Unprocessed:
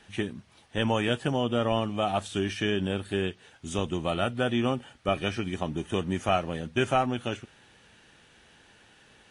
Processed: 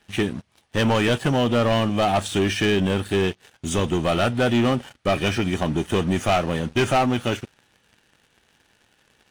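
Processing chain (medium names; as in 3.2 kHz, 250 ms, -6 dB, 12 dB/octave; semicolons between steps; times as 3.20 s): waveshaping leveller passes 3; trim -1 dB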